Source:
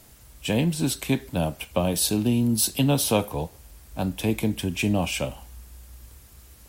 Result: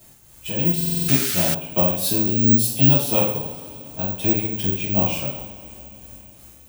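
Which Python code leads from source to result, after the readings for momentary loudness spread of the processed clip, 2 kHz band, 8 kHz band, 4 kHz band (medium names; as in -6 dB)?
17 LU, +1.5 dB, +1.0 dB, +1.0 dB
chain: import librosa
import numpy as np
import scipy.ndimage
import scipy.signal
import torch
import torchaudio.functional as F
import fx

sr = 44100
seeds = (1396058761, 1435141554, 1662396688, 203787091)

y = x * (1.0 - 0.61 / 2.0 + 0.61 / 2.0 * np.cos(2.0 * np.pi * 2.8 * (np.arange(len(x)) / sr)))
y = fx.rev_double_slope(y, sr, seeds[0], early_s=0.56, late_s=4.0, knee_db=-20, drr_db=-9.0)
y = fx.spec_paint(y, sr, seeds[1], shape='noise', start_s=0.97, length_s=0.58, low_hz=1200.0, high_hz=11000.0, level_db=-21.0)
y = (np.kron(y[::2], np.eye(2)[0]) * 2)[:len(y)]
y = fx.buffer_glitch(y, sr, at_s=(0.76,), block=2048, repeats=6)
y = y * 10.0 ** (-6.5 / 20.0)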